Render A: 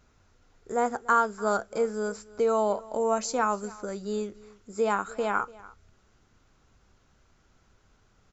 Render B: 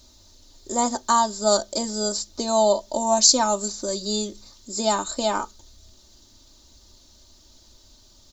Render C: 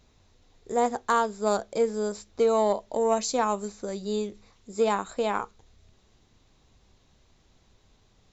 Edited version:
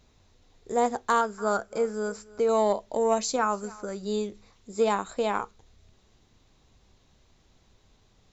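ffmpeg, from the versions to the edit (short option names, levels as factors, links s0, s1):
-filter_complex "[0:a]asplit=2[s0][s1];[2:a]asplit=3[s2][s3][s4];[s2]atrim=end=1.212[s5];[s0]atrim=start=1.208:end=2.492[s6];[s3]atrim=start=2.488:end=3.362[s7];[s1]atrim=start=3.358:end=4.032[s8];[s4]atrim=start=4.028[s9];[s5][s6]acrossfade=d=0.004:c1=hsin:c2=hsin[s10];[s10][s7]acrossfade=d=0.004:c1=hsin:c2=hsin[s11];[s11][s8]acrossfade=d=0.004:c1=hsin:c2=hsin[s12];[s12][s9]acrossfade=d=0.004:c1=hsin:c2=hsin"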